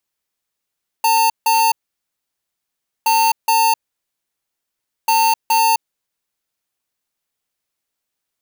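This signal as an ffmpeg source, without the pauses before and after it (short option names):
-f lavfi -i "aevalsrc='0.2*(2*lt(mod(900*t,1),0.5)-1)*clip(min(mod(mod(t,2.02),0.42),0.26-mod(mod(t,2.02),0.42))/0.005,0,1)*lt(mod(t,2.02),0.84)':d=6.06:s=44100"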